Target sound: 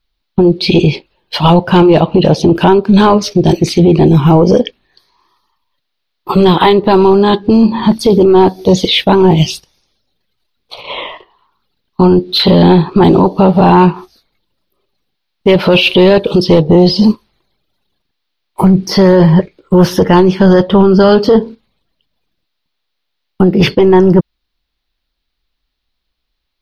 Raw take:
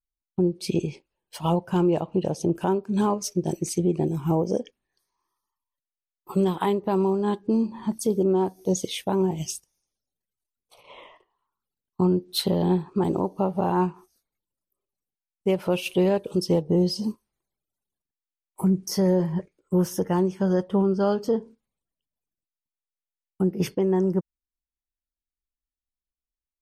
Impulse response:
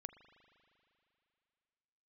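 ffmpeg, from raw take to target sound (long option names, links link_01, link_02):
-filter_complex "[0:a]highshelf=frequency=5600:width_type=q:width=3:gain=-11.5,apsyclip=24.5dB,acrossover=split=3500[link_01][link_02];[link_02]acompressor=threshold=-18dB:ratio=4:attack=1:release=60[link_03];[link_01][link_03]amix=inputs=2:normalize=0,volume=-2dB"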